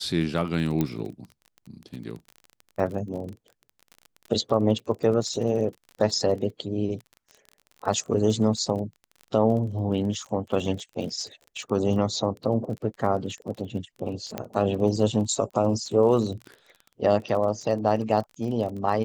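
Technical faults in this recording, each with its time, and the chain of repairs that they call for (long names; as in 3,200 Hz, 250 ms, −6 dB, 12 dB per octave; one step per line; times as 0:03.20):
surface crackle 27 per second −34 dBFS
0:00.81: click −12 dBFS
0:14.38: click −15 dBFS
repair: click removal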